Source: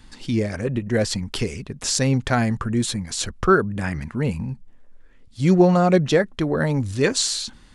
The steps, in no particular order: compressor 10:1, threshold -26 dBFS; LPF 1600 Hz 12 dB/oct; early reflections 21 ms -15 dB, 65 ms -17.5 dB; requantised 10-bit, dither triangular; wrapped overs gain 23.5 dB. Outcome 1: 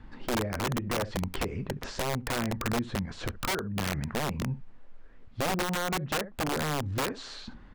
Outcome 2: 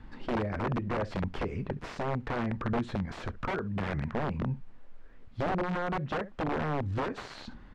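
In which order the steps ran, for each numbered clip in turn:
early reflections > requantised > LPF > compressor > wrapped overs; compressor > early reflections > wrapped overs > requantised > LPF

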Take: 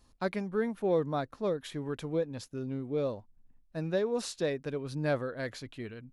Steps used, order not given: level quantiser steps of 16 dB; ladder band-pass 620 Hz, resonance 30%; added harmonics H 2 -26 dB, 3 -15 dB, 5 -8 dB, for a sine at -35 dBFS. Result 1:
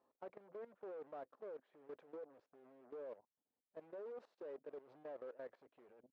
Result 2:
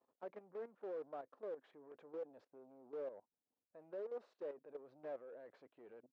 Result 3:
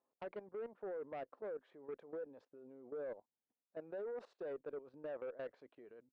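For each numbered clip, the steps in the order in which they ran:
added harmonics > ladder band-pass > level quantiser; level quantiser > added harmonics > ladder band-pass; ladder band-pass > level quantiser > added harmonics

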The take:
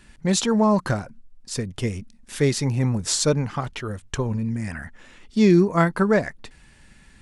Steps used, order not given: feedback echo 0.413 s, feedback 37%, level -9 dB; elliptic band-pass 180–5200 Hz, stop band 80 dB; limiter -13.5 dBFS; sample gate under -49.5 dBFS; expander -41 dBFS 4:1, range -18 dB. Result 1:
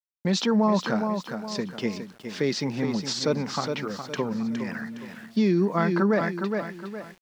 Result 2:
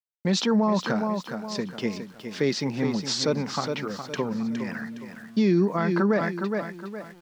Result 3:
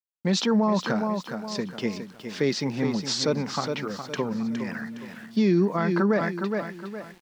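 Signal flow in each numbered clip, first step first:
feedback echo > limiter > elliptic band-pass > expander > sample gate; elliptic band-pass > expander > feedback echo > sample gate > limiter; feedback echo > expander > elliptic band-pass > sample gate > limiter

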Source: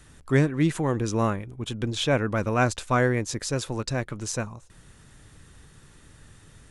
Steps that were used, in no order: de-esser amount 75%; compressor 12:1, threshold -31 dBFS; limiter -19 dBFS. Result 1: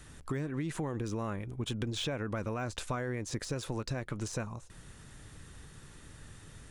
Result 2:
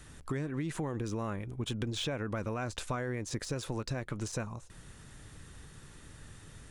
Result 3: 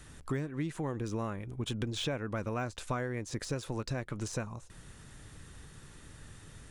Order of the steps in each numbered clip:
de-esser > limiter > compressor; limiter > de-esser > compressor; de-esser > compressor > limiter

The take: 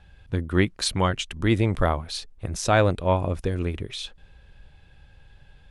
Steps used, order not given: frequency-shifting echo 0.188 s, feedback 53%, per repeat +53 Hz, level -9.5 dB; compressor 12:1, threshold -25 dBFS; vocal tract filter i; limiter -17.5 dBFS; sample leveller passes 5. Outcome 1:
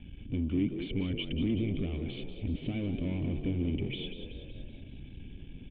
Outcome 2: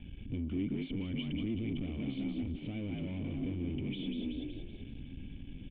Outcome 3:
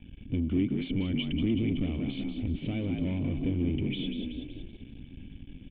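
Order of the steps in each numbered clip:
limiter > compressor > sample leveller > vocal tract filter > frequency-shifting echo; frequency-shifting echo > limiter > sample leveller > compressor > vocal tract filter; compressor > frequency-shifting echo > sample leveller > vocal tract filter > limiter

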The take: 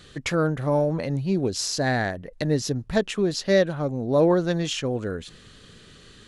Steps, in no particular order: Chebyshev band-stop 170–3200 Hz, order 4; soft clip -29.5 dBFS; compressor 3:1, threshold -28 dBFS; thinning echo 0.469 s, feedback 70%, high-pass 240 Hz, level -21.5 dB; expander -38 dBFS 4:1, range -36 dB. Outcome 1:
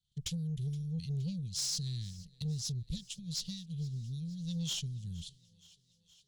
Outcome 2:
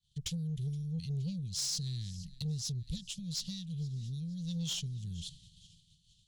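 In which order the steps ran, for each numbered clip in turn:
compressor > Chebyshev band-stop > expander > soft clip > thinning echo; thinning echo > expander > compressor > Chebyshev band-stop > soft clip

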